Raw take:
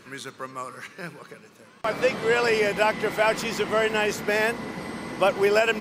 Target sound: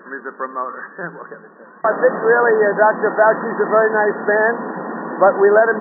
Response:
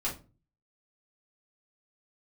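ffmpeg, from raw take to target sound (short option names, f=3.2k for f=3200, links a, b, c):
-filter_complex "[0:a]asplit=2[a][b];[1:a]atrim=start_sample=2205[c];[b][c]afir=irnorm=-1:irlink=0,volume=-20.5dB[d];[a][d]amix=inputs=2:normalize=0,asplit=2[e][f];[f]highpass=f=720:p=1,volume=10dB,asoftclip=type=tanh:threshold=-6.5dB[g];[e][g]amix=inputs=2:normalize=0,lowpass=f=1.4k:p=1,volume=-6dB,afftfilt=real='re*between(b*sr/4096,160,1900)':imag='im*between(b*sr/4096,160,1900)':win_size=4096:overlap=0.75,volume=8dB"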